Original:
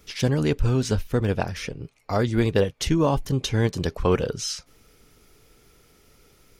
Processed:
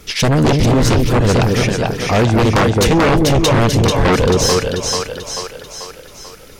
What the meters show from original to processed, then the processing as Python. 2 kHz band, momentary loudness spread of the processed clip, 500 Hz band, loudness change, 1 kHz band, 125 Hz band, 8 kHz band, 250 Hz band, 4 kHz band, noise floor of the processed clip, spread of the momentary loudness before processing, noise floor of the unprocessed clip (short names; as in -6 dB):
+14.0 dB, 12 LU, +10.5 dB, +10.5 dB, +14.0 dB, +10.0 dB, +14.0 dB, +10.5 dB, +13.5 dB, -38 dBFS, 8 LU, -59 dBFS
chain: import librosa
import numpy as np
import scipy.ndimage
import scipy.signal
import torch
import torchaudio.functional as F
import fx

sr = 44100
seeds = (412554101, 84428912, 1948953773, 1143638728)

y = fx.echo_split(x, sr, split_hz=530.0, low_ms=215, high_ms=439, feedback_pct=52, wet_db=-4.0)
y = fx.spec_repair(y, sr, seeds[0], start_s=0.66, length_s=0.24, low_hz=930.0, high_hz=2100.0, source='both')
y = fx.fold_sine(y, sr, drive_db=13, ceiling_db=-5.5)
y = F.gain(torch.from_numpy(y), -3.0).numpy()